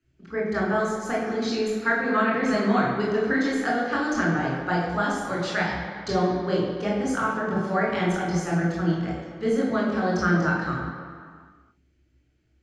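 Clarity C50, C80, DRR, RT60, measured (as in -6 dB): 0.5 dB, 3.5 dB, -4.0 dB, 2.2 s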